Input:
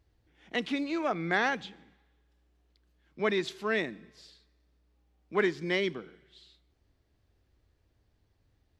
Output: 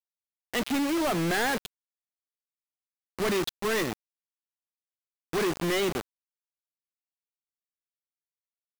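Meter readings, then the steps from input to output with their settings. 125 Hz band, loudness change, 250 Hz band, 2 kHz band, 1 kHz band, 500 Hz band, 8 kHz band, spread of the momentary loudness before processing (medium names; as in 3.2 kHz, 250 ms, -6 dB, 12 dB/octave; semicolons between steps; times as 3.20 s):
+5.5 dB, +2.5 dB, +4.0 dB, 0.0 dB, +2.5 dB, +2.0 dB, +15.5 dB, 10 LU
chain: local Wiener filter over 15 samples; companded quantiser 2-bit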